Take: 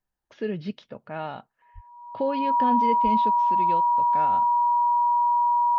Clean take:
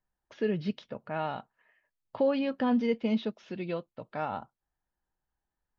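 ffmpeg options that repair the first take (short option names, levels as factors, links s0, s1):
-filter_complex "[0:a]bandreject=f=960:w=30,asplit=3[s0][s1][s2];[s0]afade=t=out:st=1.74:d=0.02[s3];[s1]highpass=f=140:w=0.5412,highpass=f=140:w=1.3066,afade=t=in:st=1.74:d=0.02,afade=t=out:st=1.86:d=0.02[s4];[s2]afade=t=in:st=1.86:d=0.02[s5];[s3][s4][s5]amix=inputs=3:normalize=0,asplit=3[s6][s7][s8];[s6]afade=t=out:st=3.03:d=0.02[s9];[s7]highpass=f=140:w=0.5412,highpass=f=140:w=1.3066,afade=t=in:st=3.03:d=0.02,afade=t=out:st=3.15:d=0.02[s10];[s8]afade=t=in:st=3.15:d=0.02[s11];[s9][s10][s11]amix=inputs=3:normalize=0"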